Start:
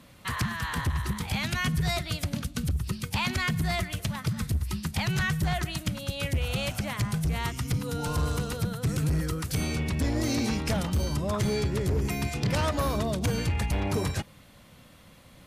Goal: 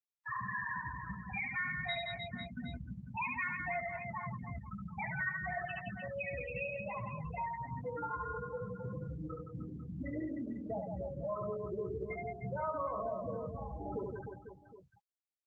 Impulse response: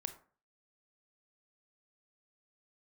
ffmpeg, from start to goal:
-filter_complex "[0:a]asplit=2[link_01][link_02];[link_02]highpass=frequency=720:poles=1,volume=12dB,asoftclip=type=tanh:threshold=-21.5dB[link_03];[link_01][link_03]amix=inputs=2:normalize=0,lowpass=frequency=2500:poles=1,volume=-6dB,afftfilt=real='re*gte(hypot(re,im),0.141)':imag='im*gte(hypot(re,im),0.141)':win_size=1024:overlap=0.75,afftdn=noise_reduction=30:noise_floor=-54,acontrast=21,asplit=2[link_04][link_05];[link_05]adelay=16,volume=-8dB[link_06];[link_04][link_06]amix=inputs=2:normalize=0,afftfilt=real='re*gte(hypot(re,im),0.0126)':imag='im*gte(hypot(re,im),0.0126)':win_size=1024:overlap=0.75,aemphasis=mode=production:type=riaa,asplit=2[link_07][link_08];[link_08]aecho=0:1:70|168|305.2|497.3|766.2:0.631|0.398|0.251|0.158|0.1[link_09];[link_07][link_09]amix=inputs=2:normalize=0,acompressor=threshold=-32dB:ratio=2.5,lowshelf=frequency=150:gain=2,volume=-5.5dB" -ar 48000 -c:a libopus -b:a 20k

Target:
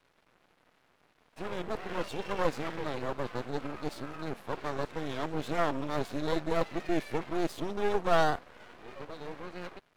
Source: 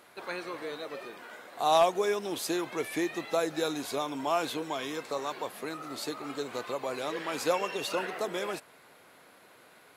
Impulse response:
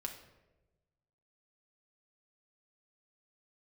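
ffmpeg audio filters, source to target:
-af "areverse,lowpass=frequency=2100:poles=1,lowshelf=frequency=260:gain=6.5,aeval=exprs='sgn(val(0))*max(abs(val(0))-0.00119,0)':channel_layout=same,dynaudnorm=framelen=680:gausssize=7:maxgain=3dB,aeval=exprs='max(val(0),0)':channel_layout=same"

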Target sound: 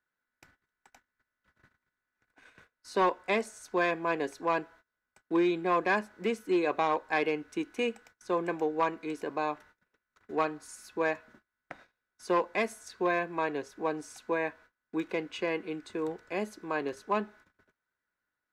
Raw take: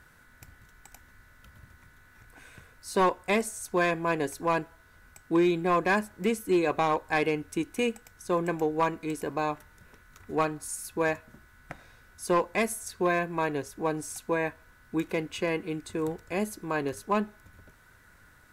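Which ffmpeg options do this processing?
ffmpeg -i in.wav -filter_complex "[0:a]agate=range=-26dB:threshold=-50dB:ratio=16:detection=peak,acrossover=split=210 6100:gain=0.178 1 0.158[link_01][link_02][link_03];[link_01][link_02][link_03]amix=inputs=3:normalize=0,volume=-2dB" out.wav

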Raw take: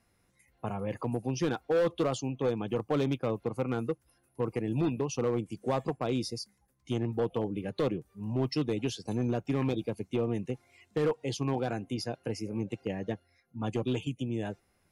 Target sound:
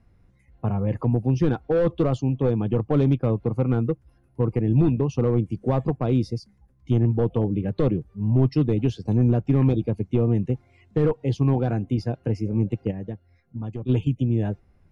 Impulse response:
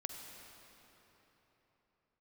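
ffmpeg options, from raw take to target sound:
-filter_complex "[0:a]aemphasis=mode=reproduction:type=riaa,asplit=3[link_01][link_02][link_03];[link_01]afade=type=out:start_time=12.9:duration=0.02[link_04];[link_02]acompressor=threshold=-33dB:ratio=4,afade=type=in:start_time=12.9:duration=0.02,afade=type=out:start_time=13.88:duration=0.02[link_05];[link_03]afade=type=in:start_time=13.88:duration=0.02[link_06];[link_04][link_05][link_06]amix=inputs=3:normalize=0,volume=2.5dB"

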